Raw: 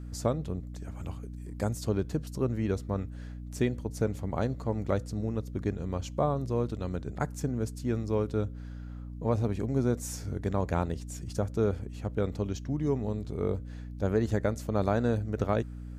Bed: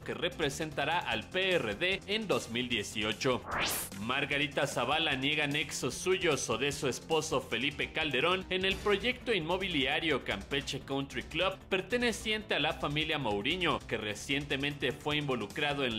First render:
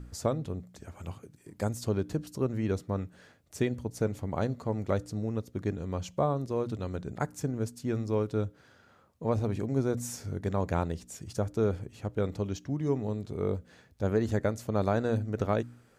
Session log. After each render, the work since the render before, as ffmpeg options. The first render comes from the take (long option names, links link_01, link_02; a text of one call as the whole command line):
ffmpeg -i in.wav -af "bandreject=frequency=60:width_type=h:width=4,bandreject=frequency=120:width_type=h:width=4,bandreject=frequency=180:width_type=h:width=4,bandreject=frequency=240:width_type=h:width=4,bandreject=frequency=300:width_type=h:width=4" out.wav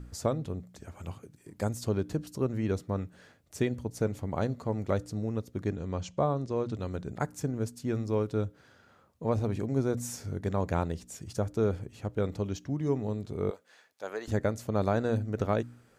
ffmpeg -i in.wav -filter_complex "[0:a]asettb=1/sr,asplit=3[link_01][link_02][link_03];[link_01]atrim=end=5.704[link_04];[link_02]atrim=start=5.7:end=6.76,asetpts=PTS-STARTPTS,afade=type=in:duration=0.004:curve=qsin,afade=type=out:start_time=1.056:duration=0.004:curve=qsin,lowpass=frequency=8000:width=0.5412,lowpass=frequency=8000:width=1.3066[link_05];[link_03]atrim=start=6.756[link_06];[link_04][link_05]acrossfade=duration=0.004:curve1=hsin:curve2=qsin[link_07];[link_07][link_06]acrossfade=duration=0.004:curve1=qsin:curve2=hsin,asettb=1/sr,asplit=3[link_08][link_09][link_10];[link_08]atrim=end=13.504[link_11];[link_09]atrim=start=13.5:end=14.28,asetpts=PTS-STARTPTS,afade=type=in:duration=0.004:curve=qsin,afade=type=out:start_time=0.776:duration=0.004:curve=qsin,highpass=700[link_12];[link_10]atrim=start=14.276[link_13];[link_11][link_12]acrossfade=duration=0.004:curve1=hsin:curve2=qsin[link_14];[link_14][link_13]acrossfade=duration=0.004:curve1=qsin:curve2=hsin" out.wav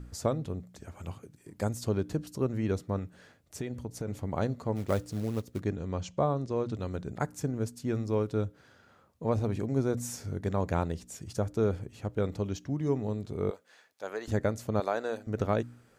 ffmpeg -i in.wav -filter_complex "[0:a]asettb=1/sr,asplit=3[link_01][link_02][link_03];[link_01]atrim=end=2.984[link_04];[link_02]atrim=start=2.98:end=4.08,asetpts=PTS-STARTPTS,afade=type=in:duration=0.004:curve=qsin,afade=type=out:start_time=1.096:duration=0.004:curve=qsin,acompressor=threshold=-31dB:ratio=6:attack=3.2:release=140:knee=1:detection=peak[link_05];[link_03]atrim=start=4.076[link_06];[link_04][link_05]acrossfade=duration=0.004:curve1=hsin:curve2=qsin[link_07];[link_07][link_06]acrossfade=duration=0.004:curve1=qsin:curve2=hsin,asplit=3[link_08][link_09][link_10];[link_08]afade=type=out:start_time=4.75:duration=0.02[link_11];[link_09]acrusher=bits=5:mode=log:mix=0:aa=0.000001,afade=type=in:start_time=4.75:duration=0.02,afade=type=out:start_time=5.59:duration=0.02[link_12];[link_10]afade=type=in:start_time=5.59:duration=0.02[link_13];[link_11][link_12][link_13]amix=inputs=3:normalize=0,asettb=1/sr,asplit=3[link_14][link_15][link_16];[link_14]atrim=end=14.804[link_17];[link_15]atrim=start=14.8:end=15.27,asetpts=PTS-STARTPTS,afade=type=in:duration=0.004:curve=qsin,afade=type=out:start_time=0.466:duration=0.004:curve=qsin,highpass=460[link_18];[link_16]atrim=start=15.266[link_19];[link_17][link_18]acrossfade=duration=0.004:curve1=hsin:curve2=qsin[link_20];[link_20][link_19]acrossfade=duration=0.004:curve1=qsin:curve2=hsin" out.wav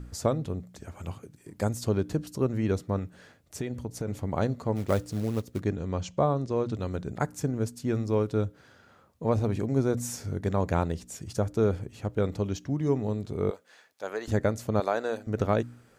ffmpeg -i in.wav -af "volume=3dB" out.wav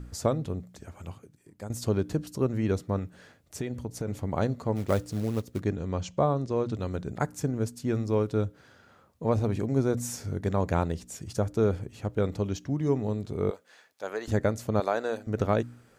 ffmpeg -i in.wav -filter_complex "[0:a]asplit=2[link_01][link_02];[link_01]atrim=end=1.7,asetpts=PTS-STARTPTS,afade=type=out:start_time=0.58:duration=1.12:silence=0.223872[link_03];[link_02]atrim=start=1.7,asetpts=PTS-STARTPTS,afade=type=in:duration=0.004:curve=hsin:silence=0.223872[link_04];[link_03][link_04]concat=n=2:v=0:a=1" out.wav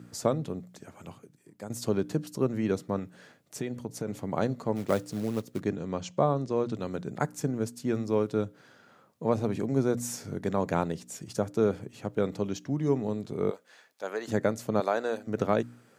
ffmpeg -i in.wav -af "highpass=frequency=130:width=0.5412,highpass=frequency=130:width=1.3066" out.wav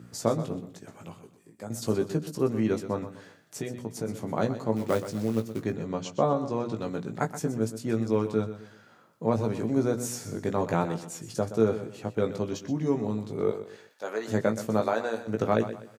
ffmpeg -i in.wav -filter_complex "[0:a]asplit=2[link_01][link_02];[link_02]adelay=18,volume=-5.5dB[link_03];[link_01][link_03]amix=inputs=2:normalize=0,aecho=1:1:124|248|372:0.251|0.0829|0.0274" out.wav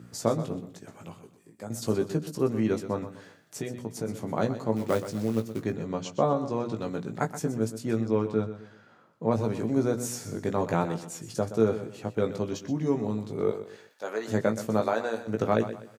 ffmpeg -i in.wav -filter_complex "[0:a]asettb=1/sr,asplit=3[link_01][link_02][link_03];[link_01]atrim=end=8.014[link_04];[link_02]atrim=start=8.01:end=9.31,asetpts=PTS-STARTPTS,afade=type=in:duration=0.004:curve=qsin,afade=type=out:start_time=1.296:duration=0.004:curve=qsin,lowpass=frequency=3200:poles=1[link_05];[link_03]atrim=start=9.306[link_06];[link_04][link_05]acrossfade=duration=0.004:curve1=hsin:curve2=qsin[link_07];[link_07][link_06]acrossfade=duration=0.004:curve1=qsin:curve2=hsin" out.wav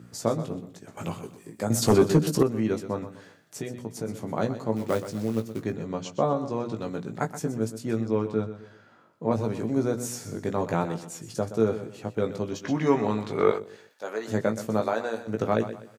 ffmpeg -i in.wav -filter_complex "[0:a]asettb=1/sr,asplit=3[link_01][link_02][link_03];[link_01]atrim=end=0.974[link_04];[link_02]atrim=start=0.97:end=2.43,asetpts=PTS-STARTPTS,afade=type=in:duration=0.004:curve=qsin,afade=type=out:start_time=1.456:duration=0.004:curve=qsin,aeval=exprs='0.266*sin(PI/2*2.24*val(0)/0.266)':channel_layout=same[link_05];[link_03]atrim=start=2.426[link_06];[link_04][link_05]acrossfade=duration=0.004:curve1=hsin:curve2=qsin[link_07];[link_07][link_06]acrossfade=duration=0.004:curve1=qsin:curve2=hsin,asettb=1/sr,asplit=3[link_08][link_09][link_10];[link_08]atrim=end=8.614[link_11];[link_09]atrim=start=8.61:end=9.32,asetpts=PTS-STARTPTS,afade=type=in:duration=0.004:curve=qsin,afade=type=out:start_time=0.706:duration=0.004:curve=qsin,asplit=2[link_12][link_13];[link_13]adelay=21,volume=-6.5dB[link_14];[link_12][link_14]amix=inputs=2:normalize=0,atrim=end_sample=31311[link_15];[link_10]atrim=start=9.316[link_16];[link_11][link_15]acrossfade=duration=0.004:curve1=hsin:curve2=qsin[link_17];[link_17][link_16]acrossfade=duration=0.004:curve1=qsin:curve2=hsin,asplit=3[link_18][link_19][link_20];[link_18]afade=type=out:start_time=12.63:duration=0.02[link_21];[link_19]equalizer=frequency=1700:width=0.4:gain=15,afade=type=in:start_time=12.63:duration=0.02,afade=type=out:start_time=13.58:duration=0.02[link_22];[link_20]afade=type=in:start_time=13.58:duration=0.02[link_23];[link_21][link_22][link_23]amix=inputs=3:normalize=0" out.wav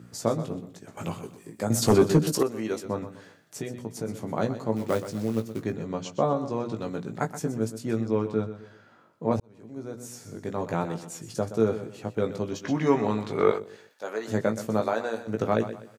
ffmpeg -i in.wav -filter_complex "[0:a]asettb=1/sr,asplit=3[link_01][link_02][link_03];[link_01]atrim=end=2.324[link_04];[link_02]atrim=start=2.32:end=2.85,asetpts=PTS-STARTPTS,afade=type=in:duration=0.004:curve=qsin,afade=type=out:start_time=0.526:duration=0.004:curve=qsin,bass=frequency=250:gain=-12,treble=frequency=4000:gain=5[link_05];[link_03]atrim=start=2.846[link_06];[link_04][link_05]acrossfade=duration=0.004:curve1=hsin:curve2=qsin[link_07];[link_07][link_06]acrossfade=duration=0.004:curve1=qsin:curve2=hsin,asplit=2[link_08][link_09];[link_08]atrim=end=9.4,asetpts=PTS-STARTPTS,afade=type=out:start_time=9.396:duration=0.004:curve=hsin[link_10];[link_09]atrim=start=9.4,asetpts=PTS-STARTPTS,afade=type=in:duration=1.73[link_11];[link_10][link_11]concat=n=2:v=0:a=1" out.wav